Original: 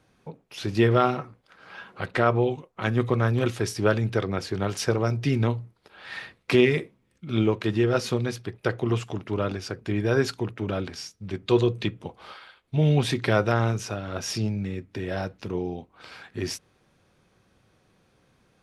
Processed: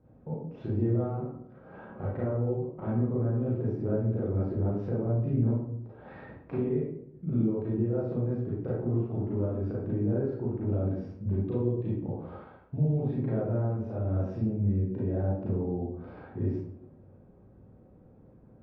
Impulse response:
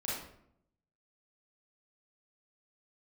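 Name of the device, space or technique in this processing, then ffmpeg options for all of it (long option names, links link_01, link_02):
television next door: -filter_complex "[0:a]acompressor=threshold=-36dB:ratio=4,lowpass=530[link_01];[1:a]atrim=start_sample=2205[link_02];[link_01][link_02]afir=irnorm=-1:irlink=0,volume=5.5dB"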